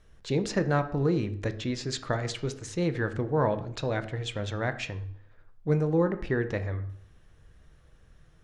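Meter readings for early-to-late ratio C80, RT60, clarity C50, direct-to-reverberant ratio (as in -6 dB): 17.0 dB, 0.60 s, 13.5 dB, 9.0 dB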